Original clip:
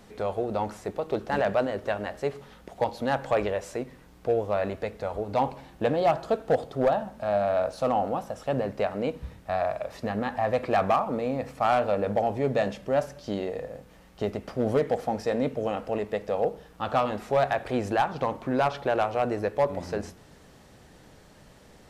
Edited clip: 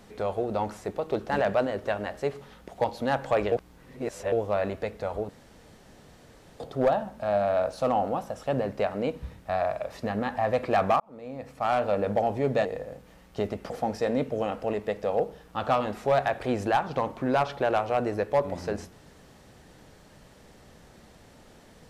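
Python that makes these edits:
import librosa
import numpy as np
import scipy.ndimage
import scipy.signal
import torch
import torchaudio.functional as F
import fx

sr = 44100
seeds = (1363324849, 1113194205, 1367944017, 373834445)

y = fx.edit(x, sr, fx.reverse_span(start_s=3.52, length_s=0.8),
    fx.room_tone_fill(start_s=5.29, length_s=1.31),
    fx.fade_in_span(start_s=11.0, length_s=0.95),
    fx.cut(start_s=12.65, length_s=0.83),
    fx.cut(start_s=14.53, length_s=0.42), tone=tone)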